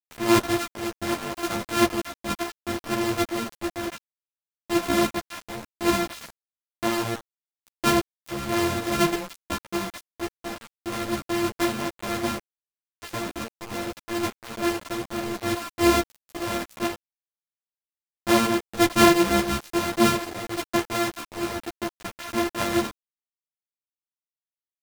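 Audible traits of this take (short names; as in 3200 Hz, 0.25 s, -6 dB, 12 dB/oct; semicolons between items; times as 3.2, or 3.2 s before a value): a buzz of ramps at a fixed pitch in blocks of 128 samples; random-step tremolo, depth 85%; a quantiser's noise floor 6-bit, dither none; a shimmering, thickened sound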